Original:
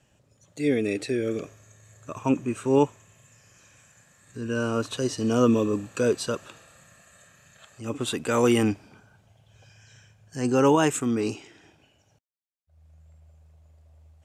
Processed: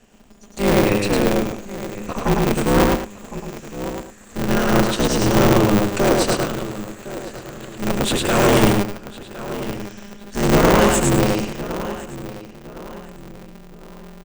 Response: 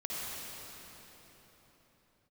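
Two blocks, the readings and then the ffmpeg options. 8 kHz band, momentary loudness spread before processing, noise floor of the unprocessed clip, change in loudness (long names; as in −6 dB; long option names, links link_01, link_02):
+10.0 dB, 16 LU, −65 dBFS, +6.5 dB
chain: -filter_complex "[0:a]equalizer=frequency=110:width_type=o:width=0.55:gain=8.5,asplit=2[link_01][link_02];[link_02]adelay=1060,lowpass=frequency=4000:poles=1,volume=-17dB,asplit=2[link_03][link_04];[link_04]adelay=1060,lowpass=frequency=4000:poles=1,volume=0.35,asplit=2[link_05][link_06];[link_06]adelay=1060,lowpass=frequency=4000:poles=1,volume=0.35[link_07];[link_03][link_05][link_07]amix=inputs=3:normalize=0[link_08];[link_01][link_08]amix=inputs=2:normalize=0,aeval=exprs='0.376*(cos(1*acos(clip(val(0)/0.376,-1,1)))-cos(1*PI/2))+0.106*(cos(5*acos(clip(val(0)/0.376,-1,1)))-cos(5*PI/2))':channel_layout=same,asplit=2[link_09][link_10];[link_10]aecho=0:1:105|204.1:0.794|0.251[link_11];[link_09][link_11]amix=inputs=2:normalize=0,aeval=exprs='val(0)*sgn(sin(2*PI*100*n/s))':channel_layout=same"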